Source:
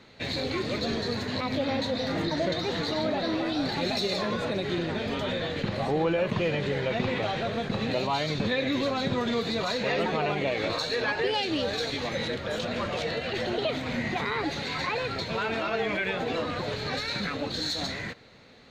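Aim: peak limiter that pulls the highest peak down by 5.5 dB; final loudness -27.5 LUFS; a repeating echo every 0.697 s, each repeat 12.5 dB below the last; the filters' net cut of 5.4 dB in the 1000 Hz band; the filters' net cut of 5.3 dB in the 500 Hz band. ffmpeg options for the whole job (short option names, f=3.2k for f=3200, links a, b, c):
-af "equalizer=f=500:t=o:g=-5,equalizer=f=1k:t=o:g=-5.5,alimiter=limit=-22.5dB:level=0:latency=1,aecho=1:1:697|1394|2091:0.237|0.0569|0.0137,volume=4dB"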